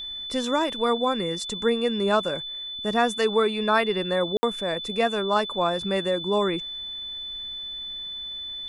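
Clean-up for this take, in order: band-stop 3.5 kHz, Q 30; room tone fill 4.37–4.43 s

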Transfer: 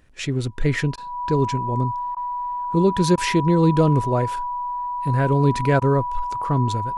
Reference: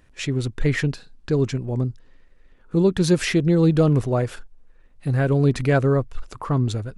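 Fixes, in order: band-stop 980 Hz, Q 30; interpolate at 0.96/2.15/3.16/5.80 s, 15 ms

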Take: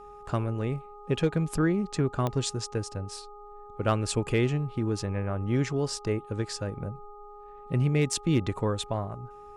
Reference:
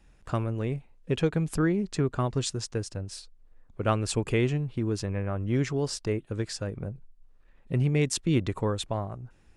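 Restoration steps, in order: clip repair -15.5 dBFS; de-click; de-hum 413 Hz, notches 3

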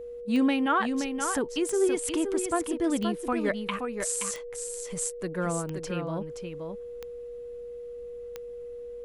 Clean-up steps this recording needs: de-click; band-stop 480 Hz, Q 30; inverse comb 524 ms -6.5 dB

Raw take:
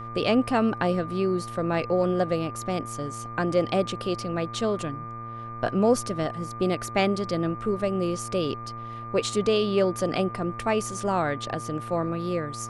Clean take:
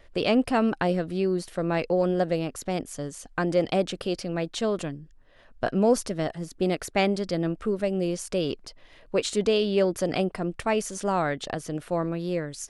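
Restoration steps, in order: de-hum 115.4 Hz, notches 21; band-stop 1.2 kHz, Q 30

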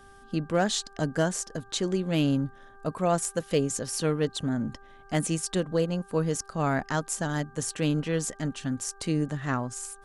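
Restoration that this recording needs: clip repair -14.5 dBFS; de-hum 395.2 Hz, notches 4

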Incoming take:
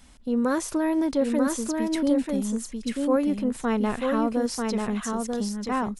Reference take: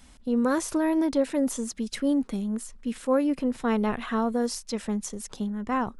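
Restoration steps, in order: inverse comb 941 ms -3.5 dB

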